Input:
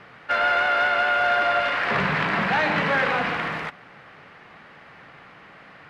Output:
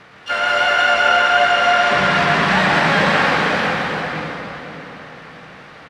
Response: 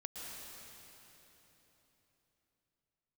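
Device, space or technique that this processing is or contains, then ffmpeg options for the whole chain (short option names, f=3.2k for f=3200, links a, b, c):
shimmer-style reverb: -filter_complex "[0:a]asplit=3[a][b][c];[a]afade=t=out:st=0.69:d=0.02[d];[b]lowpass=5.3k,afade=t=in:st=0.69:d=0.02,afade=t=out:st=2.15:d=0.02[e];[c]afade=t=in:st=2.15:d=0.02[f];[d][e][f]amix=inputs=3:normalize=0,asplit=2[g][h];[h]adelay=508,lowpass=f=870:p=1,volume=-5dB,asplit=2[i][j];[j]adelay=508,lowpass=f=870:p=1,volume=0.16,asplit=2[k][l];[l]adelay=508,lowpass=f=870:p=1,volume=0.16[m];[g][i][k][m]amix=inputs=4:normalize=0,asplit=2[n][o];[o]asetrate=88200,aresample=44100,atempo=0.5,volume=-10dB[p];[n][p]amix=inputs=2:normalize=0[q];[1:a]atrim=start_sample=2205[r];[q][r]afir=irnorm=-1:irlink=0,volume=7.5dB"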